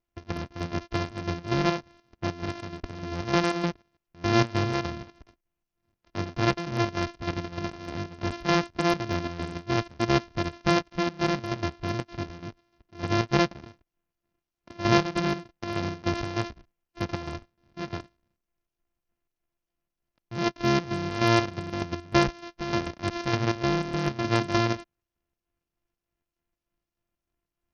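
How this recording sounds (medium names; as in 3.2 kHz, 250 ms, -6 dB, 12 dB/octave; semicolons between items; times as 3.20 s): a buzz of ramps at a fixed pitch in blocks of 128 samples; chopped level 3.3 Hz, depth 60%, duty 60%; SBC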